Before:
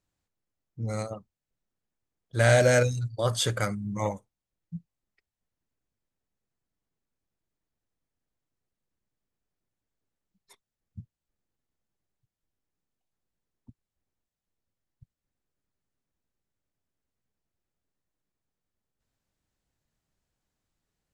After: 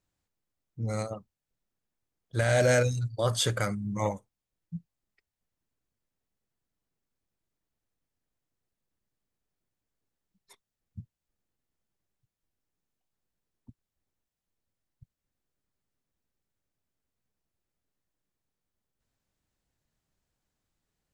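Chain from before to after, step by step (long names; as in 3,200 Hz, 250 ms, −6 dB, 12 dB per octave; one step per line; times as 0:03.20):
brickwall limiter −14.5 dBFS, peak gain reduction 7.5 dB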